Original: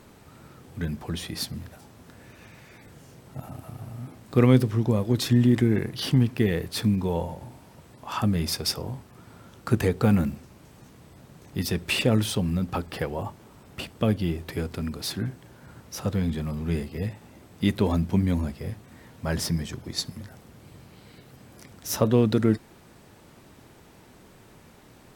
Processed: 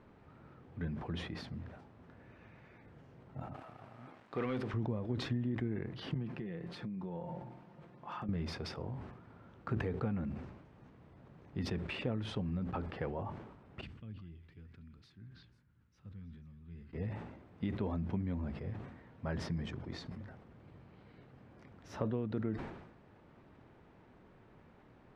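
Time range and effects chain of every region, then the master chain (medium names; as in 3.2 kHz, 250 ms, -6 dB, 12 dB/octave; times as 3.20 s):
3.54–4.74 s: high-pass 940 Hz 6 dB/octave + hard clipper -18.5 dBFS + waveshaping leveller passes 2
6.14–8.29 s: resonant low shelf 110 Hz -7 dB, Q 1.5 + comb 5.7 ms, depth 45% + compression 16:1, threshold -29 dBFS
13.81–16.93 s: amplifier tone stack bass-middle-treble 6-0-2 + repeats whose band climbs or falls 163 ms, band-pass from 1.3 kHz, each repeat 1.4 oct, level -5 dB
whole clip: compression 6:1, threshold -24 dBFS; low-pass 2.1 kHz 12 dB/octave; decay stretcher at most 58 dB/s; trim -8.5 dB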